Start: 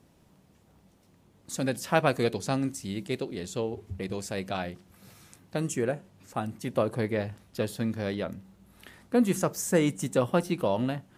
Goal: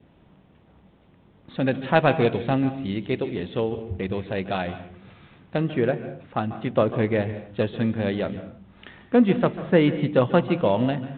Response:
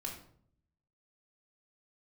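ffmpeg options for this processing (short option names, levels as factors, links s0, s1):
-filter_complex "[0:a]asplit=2[s0][s1];[1:a]atrim=start_sample=2205,afade=t=out:st=0.24:d=0.01,atrim=end_sample=11025,adelay=142[s2];[s1][s2]afir=irnorm=-1:irlink=0,volume=0.266[s3];[s0][s3]amix=inputs=2:normalize=0,adynamicequalizer=threshold=0.00316:dfrequency=1200:dqfactor=2.9:tfrequency=1200:tqfactor=2.9:attack=5:release=100:ratio=0.375:range=2:mode=cutabove:tftype=bell,volume=2" -ar 8000 -c:a adpcm_g726 -b:a 40k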